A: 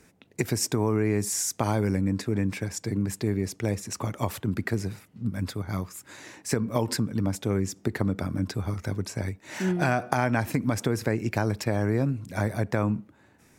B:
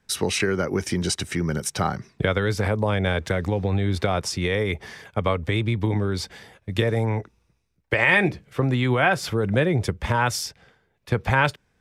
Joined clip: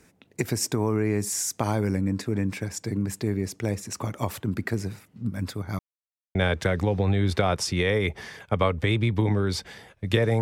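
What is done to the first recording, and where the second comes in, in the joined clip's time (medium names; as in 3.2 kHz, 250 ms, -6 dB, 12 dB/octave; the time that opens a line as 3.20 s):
A
5.79–6.35 s: mute
6.35 s: go over to B from 3.00 s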